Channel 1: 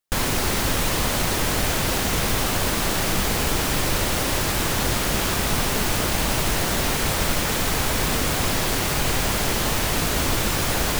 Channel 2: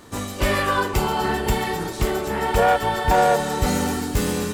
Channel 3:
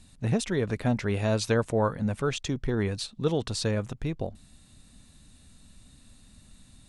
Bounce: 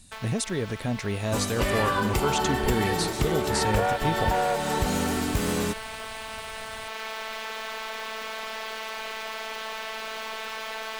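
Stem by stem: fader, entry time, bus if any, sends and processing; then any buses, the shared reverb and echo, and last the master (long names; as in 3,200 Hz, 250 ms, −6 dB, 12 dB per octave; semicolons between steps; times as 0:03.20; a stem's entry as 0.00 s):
+1.0 dB, 0.00 s, bus A, no send, three-way crossover with the lows and the highs turned down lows −24 dB, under 470 Hz, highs −17 dB, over 4,100 Hz; phases set to zero 221 Hz; automatic ducking −13 dB, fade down 0.20 s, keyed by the third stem
0.0 dB, 1.20 s, no bus, no send, downward compressor, threshold −22 dBFS, peak gain reduction 9 dB
−1.0 dB, 0.00 s, bus A, no send, high-shelf EQ 5,400 Hz +11 dB
bus A: 0.0 dB, speech leveller within 5 dB 0.5 s; brickwall limiter −17.5 dBFS, peak gain reduction 7 dB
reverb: not used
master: no processing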